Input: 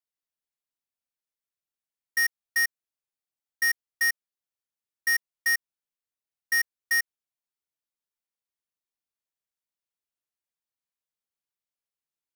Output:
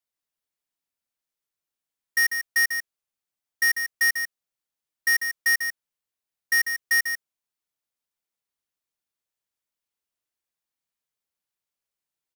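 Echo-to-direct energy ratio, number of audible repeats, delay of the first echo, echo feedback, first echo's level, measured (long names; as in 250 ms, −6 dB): −7.5 dB, 1, 145 ms, repeats not evenly spaced, −7.5 dB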